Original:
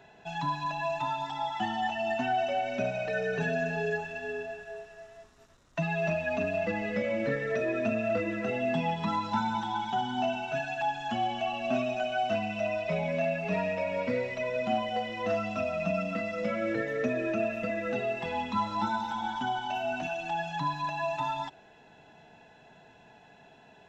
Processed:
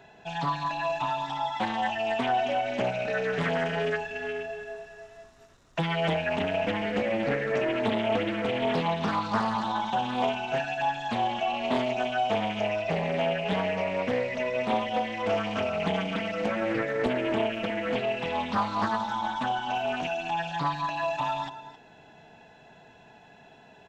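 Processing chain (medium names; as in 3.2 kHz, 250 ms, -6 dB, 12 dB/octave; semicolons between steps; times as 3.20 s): delay 266 ms -13.5 dB; loudspeaker Doppler distortion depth 0.6 ms; trim +2.5 dB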